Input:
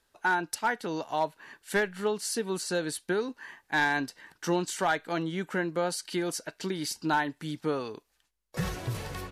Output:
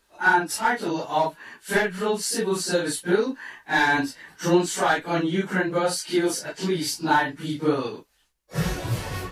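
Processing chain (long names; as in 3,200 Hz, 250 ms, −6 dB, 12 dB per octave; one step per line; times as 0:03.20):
random phases in long frames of 100 ms
level +6.5 dB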